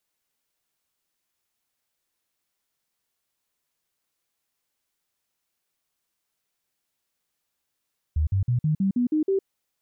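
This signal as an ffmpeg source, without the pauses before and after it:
ffmpeg -f lavfi -i "aevalsrc='0.112*clip(min(mod(t,0.16),0.11-mod(t,0.16))/0.005,0,1)*sin(2*PI*77*pow(2,floor(t/0.16)/3)*mod(t,0.16))':duration=1.28:sample_rate=44100" out.wav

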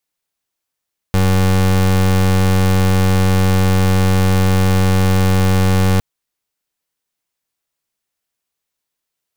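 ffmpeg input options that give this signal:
ffmpeg -f lavfi -i "aevalsrc='0.237*(2*lt(mod(94.2*t,1),0.29)-1)':duration=4.86:sample_rate=44100" out.wav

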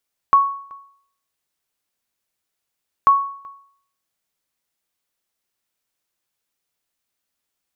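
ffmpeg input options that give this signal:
ffmpeg -f lavfi -i "aevalsrc='0.501*(sin(2*PI*1110*mod(t,2.74))*exp(-6.91*mod(t,2.74)/0.59)+0.0473*sin(2*PI*1110*max(mod(t,2.74)-0.38,0))*exp(-6.91*max(mod(t,2.74)-0.38,0)/0.59))':duration=5.48:sample_rate=44100" out.wav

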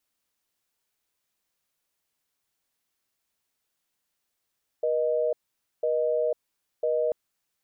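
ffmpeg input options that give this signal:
ffmpeg -f lavfi -i "aevalsrc='0.0562*(sin(2*PI*480*t)+sin(2*PI*620*t))*clip(min(mod(t,1),0.5-mod(t,1))/0.005,0,1)':duration=2.29:sample_rate=44100" out.wav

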